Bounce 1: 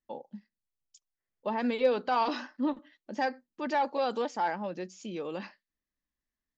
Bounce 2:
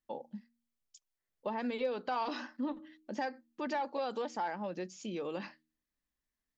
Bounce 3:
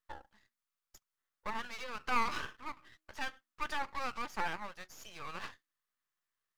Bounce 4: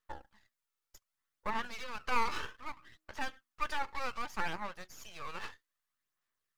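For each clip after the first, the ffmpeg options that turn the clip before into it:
-af "bandreject=f=78.26:t=h:w=4,bandreject=f=156.52:t=h:w=4,bandreject=f=234.78:t=h:w=4,bandreject=f=313.04:t=h:w=4,acompressor=threshold=0.0178:ratio=2.5"
-af "highpass=f=1200:t=q:w=3.4,aeval=exprs='max(val(0),0)':c=same,volume=1.41"
-af "aphaser=in_gain=1:out_gain=1:delay=2.3:decay=0.37:speed=0.64:type=sinusoidal"

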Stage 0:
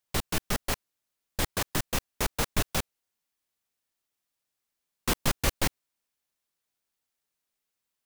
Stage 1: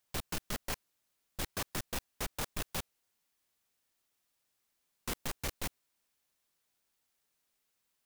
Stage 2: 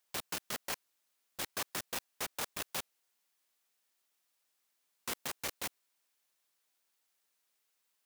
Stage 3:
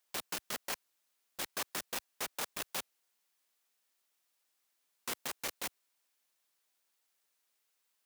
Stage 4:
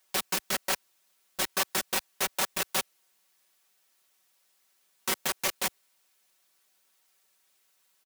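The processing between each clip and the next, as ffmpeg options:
-af "alimiter=limit=0.1:level=0:latency=1:release=12,asoftclip=type=tanh:threshold=0.0141,volume=1.58"
-af "highpass=f=470:p=1,volume=1.12"
-af "equalizer=f=89:w=1.4:g=-10.5"
-af "aecho=1:1:5.3:0.7,volume=2.51"

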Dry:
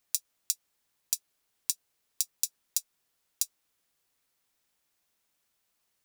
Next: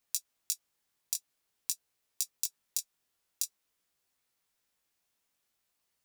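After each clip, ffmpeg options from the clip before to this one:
-af "flanger=delay=15.5:depth=7.2:speed=0.49"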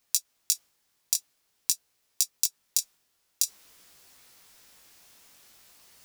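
-af "equalizer=f=5200:t=o:w=0.77:g=2.5,areverse,acompressor=mode=upward:threshold=0.00355:ratio=2.5,areverse,volume=2.24"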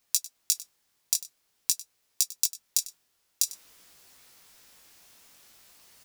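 -af "aecho=1:1:98:0.133"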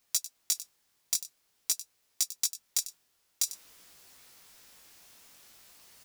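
-af "volume=7.94,asoftclip=hard,volume=0.126"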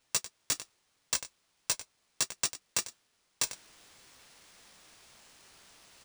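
-af "acrusher=samples=3:mix=1:aa=0.000001,volume=0.841"

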